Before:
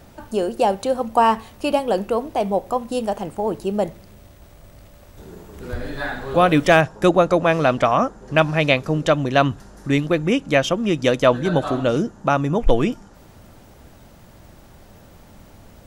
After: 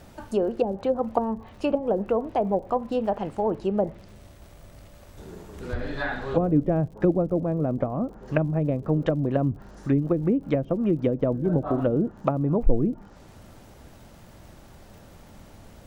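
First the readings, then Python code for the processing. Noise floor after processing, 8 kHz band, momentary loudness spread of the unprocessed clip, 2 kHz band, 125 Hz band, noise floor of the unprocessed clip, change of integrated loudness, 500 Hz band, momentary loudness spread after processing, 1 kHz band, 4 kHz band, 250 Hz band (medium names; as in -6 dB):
-49 dBFS, under -15 dB, 9 LU, -15.0 dB, -2.0 dB, -47 dBFS, -6.0 dB, -6.0 dB, 7 LU, -11.0 dB, -19.0 dB, -2.5 dB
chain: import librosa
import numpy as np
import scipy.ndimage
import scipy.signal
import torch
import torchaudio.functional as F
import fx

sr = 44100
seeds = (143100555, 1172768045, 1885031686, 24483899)

y = fx.env_lowpass_down(x, sr, base_hz=350.0, full_db=-14.0)
y = fx.dmg_crackle(y, sr, seeds[0], per_s=62.0, level_db=-44.0)
y = F.gain(torch.from_numpy(y), -2.0).numpy()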